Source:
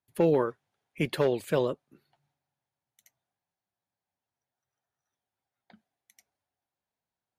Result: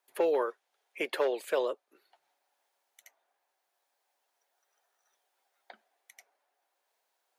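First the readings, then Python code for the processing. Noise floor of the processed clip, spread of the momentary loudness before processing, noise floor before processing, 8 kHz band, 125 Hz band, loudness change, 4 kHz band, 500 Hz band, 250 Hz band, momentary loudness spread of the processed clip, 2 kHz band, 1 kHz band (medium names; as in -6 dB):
-81 dBFS, 9 LU, under -85 dBFS, -1.5 dB, under -30 dB, -3.5 dB, -2.0 dB, -2.5 dB, -10.5 dB, 9 LU, 0.0 dB, -0.5 dB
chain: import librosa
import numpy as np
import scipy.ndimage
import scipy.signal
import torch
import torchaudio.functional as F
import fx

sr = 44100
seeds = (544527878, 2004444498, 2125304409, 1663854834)

y = scipy.signal.sosfilt(scipy.signal.butter(4, 420.0, 'highpass', fs=sr, output='sos'), x)
y = fx.band_squash(y, sr, depth_pct=40)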